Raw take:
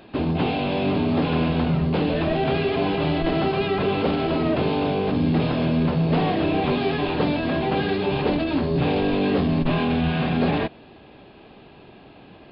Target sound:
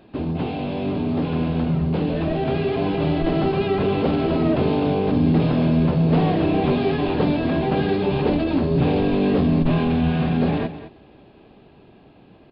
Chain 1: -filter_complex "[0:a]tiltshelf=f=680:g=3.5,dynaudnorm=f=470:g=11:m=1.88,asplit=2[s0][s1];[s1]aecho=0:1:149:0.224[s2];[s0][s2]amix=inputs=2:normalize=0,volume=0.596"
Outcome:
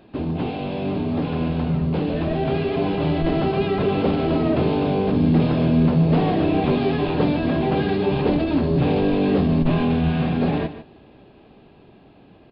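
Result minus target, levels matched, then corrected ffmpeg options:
echo 60 ms early
-filter_complex "[0:a]tiltshelf=f=680:g=3.5,dynaudnorm=f=470:g=11:m=1.88,asplit=2[s0][s1];[s1]aecho=0:1:209:0.224[s2];[s0][s2]amix=inputs=2:normalize=0,volume=0.596"

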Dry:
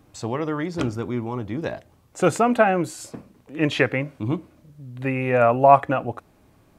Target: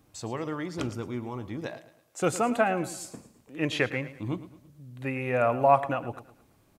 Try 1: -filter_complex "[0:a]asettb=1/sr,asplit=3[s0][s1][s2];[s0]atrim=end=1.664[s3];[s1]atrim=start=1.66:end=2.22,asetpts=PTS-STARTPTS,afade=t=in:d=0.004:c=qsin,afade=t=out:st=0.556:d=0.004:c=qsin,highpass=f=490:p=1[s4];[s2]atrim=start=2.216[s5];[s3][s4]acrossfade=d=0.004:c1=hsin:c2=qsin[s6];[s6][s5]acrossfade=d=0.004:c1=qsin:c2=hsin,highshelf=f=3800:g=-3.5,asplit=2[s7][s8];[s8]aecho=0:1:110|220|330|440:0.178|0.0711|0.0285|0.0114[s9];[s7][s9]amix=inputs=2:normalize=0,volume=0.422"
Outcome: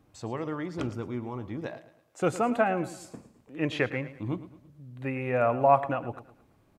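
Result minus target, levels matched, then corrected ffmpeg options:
8 kHz band -8.0 dB
-filter_complex "[0:a]asettb=1/sr,asplit=3[s0][s1][s2];[s0]atrim=end=1.664[s3];[s1]atrim=start=1.66:end=2.22,asetpts=PTS-STARTPTS,afade=t=in:d=0.004:c=qsin,afade=t=out:st=0.556:d=0.004:c=qsin,highpass=f=490:p=1[s4];[s2]atrim=start=2.216[s5];[s3][s4]acrossfade=d=0.004:c1=hsin:c2=qsin[s6];[s6][s5]acrossfade=d=0.004:c1=qsin:c2=hsin,highshelf=f=3800:g=7,asplit=2[s7][s8];[s8]aecho=0:1:110|220|330|440:0.178|0.0711|0.0285|0.0114[s9];[s7][s9]amix=inputs=2:normalize=0,volume=0.422"

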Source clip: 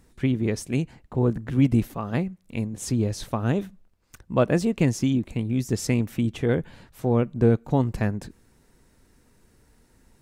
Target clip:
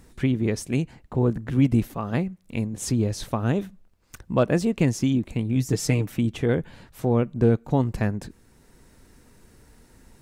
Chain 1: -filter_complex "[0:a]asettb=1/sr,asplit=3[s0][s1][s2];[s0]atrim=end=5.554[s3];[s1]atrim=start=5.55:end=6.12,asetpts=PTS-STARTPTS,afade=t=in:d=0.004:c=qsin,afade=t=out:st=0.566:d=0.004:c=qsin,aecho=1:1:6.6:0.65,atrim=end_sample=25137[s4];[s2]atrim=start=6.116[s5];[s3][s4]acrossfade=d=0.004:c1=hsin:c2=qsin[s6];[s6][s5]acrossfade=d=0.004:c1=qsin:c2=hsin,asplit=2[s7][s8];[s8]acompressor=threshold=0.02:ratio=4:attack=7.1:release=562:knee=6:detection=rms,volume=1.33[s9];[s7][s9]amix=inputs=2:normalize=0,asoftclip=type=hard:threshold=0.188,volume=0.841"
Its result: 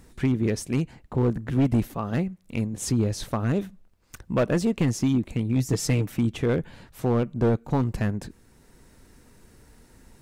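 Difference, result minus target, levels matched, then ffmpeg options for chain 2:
hard clipper: distortion +26 dB
-filter_complex "[0:a]asettb=1/sr,asplit=3[s0][s1][s2];[s0]atrim=end=5.554[s3];[s1]atrim=start=5.55:end=6.12,asetpts=PTS-STARTPTS,afade=t=in:d=0.004:c=qsin,afade=t=out:st=0.566:d=0.004:c=qsin,aecho=1:1:6.6:0.65,atrim=end_sample=25137[s4];[s2]atrim=start=6.116[s5];[s3][s4]acrossfade=d=0.004:c1=hsin:c2=qsin[s6];[s6][s5]acrossfade=d=0.004:c1=qsin:c2=hsin,asplit=2[s7][s8];[s8]acompressor=threshold=0.02:ratio=4:attack=7.1:release=562:knee=6:detection=rms,volume=1.33[s9];[s7][s9]amix=inputs=2:normalize=0,asoftclip=type=hard:threshold=0.473,volume=0.841"

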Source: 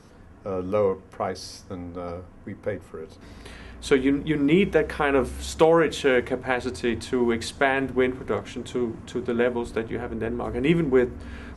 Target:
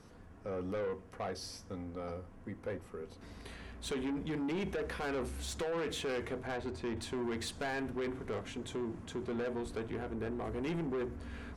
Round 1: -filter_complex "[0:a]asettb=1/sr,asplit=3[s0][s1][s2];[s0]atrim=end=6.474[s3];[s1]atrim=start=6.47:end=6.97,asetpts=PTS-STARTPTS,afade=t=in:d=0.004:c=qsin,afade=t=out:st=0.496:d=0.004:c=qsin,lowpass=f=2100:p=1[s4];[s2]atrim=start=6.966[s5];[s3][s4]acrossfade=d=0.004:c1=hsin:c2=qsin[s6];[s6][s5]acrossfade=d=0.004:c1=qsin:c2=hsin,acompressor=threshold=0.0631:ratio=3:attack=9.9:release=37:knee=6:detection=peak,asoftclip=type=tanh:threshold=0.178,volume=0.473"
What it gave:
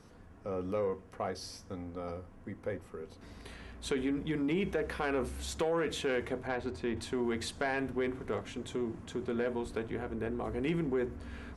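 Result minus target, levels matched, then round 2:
saturation: distortion -12 dB
-filter_complex "[0:a]asettb=1/sr,asplit=3[s0][s1][s2];[s0]atrim=end=6.474[s3];[s1]atrim=start=6.47:end=6.97,asetpts=PTS-STARTPTS,afade=t=in:d=0.004:c=qsin,afade=t=out:st=0.496:d=0.004:c=qsin,lowpass=f=2100:p=1[s4];[s2]atrim=start=6.966[s5];[s3][s4]acrossfade=d=0.004:c1=hsin:c2=qsin[s6];[s6][s5]acrossfade=d=0.004:c1=qsin:c2=hsin,acompressor=threshold=0.0631:ratio=3:attack=9.9:release=37:knee=6:detection=peak,asoftclip=type=tanh:threshold=0.0531,volume=0.473"

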